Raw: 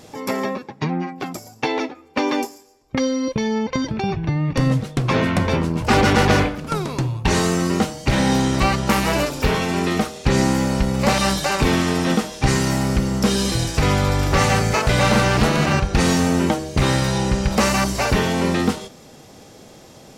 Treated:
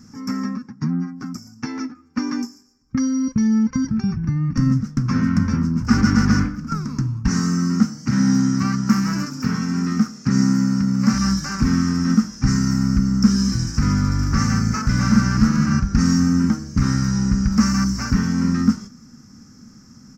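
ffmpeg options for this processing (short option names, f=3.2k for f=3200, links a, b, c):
-filter_complex "[0:a]asettb=1/sr,asplit=3[a][b][c];[a]atrim=end=0.754[d];[b]atrim=start=0.75:end=1.31,asetpts=PTS-STARTPTS,afade=t=in:d=0.004:c=qsin,afade=t=out:st=0.556:d=0.004:c=qsin,equalizer=f=2.6k:w=1.5:g=-5.5[e];[c]atrim=start=1.306[f];[d][e]acrossfade=d=0.004:c1=hsin:c2=qsin[g];[g][f]acrossfade=d=0.004:c1=qsin:c2=hsin,asettb=1/sr,asplit=3[h][i][j];[h]atrim=end=7.284[k];[i]atrim=start=7.28:end=11.14,asetpts=PTS-STARTPTS,afade=t=in:d=0.004:c=qsin,afade=t=out:st=3.856:d=0.004:c=qsin,highpass=f=110:w=0.5412,highpass=f=110:w=1.3066[l];[j]atrim=start=11.136[m];[k][l]acrossfade=d=0.004:c1=hsin:c2=qsin[n];[n][m]acrossfade=d=0.004:c1=qsin:c2=hsin,firequalizer=gain_entry='entry(150,0);entry(230,8);entry(360,-15);entry(630,-25);entry(1300,-1);entry(2500,-17);entry(3600,-25);entry(5300,3);entry(9900,-22);entry(14000,-9)':delay=0.05:min_phase=1"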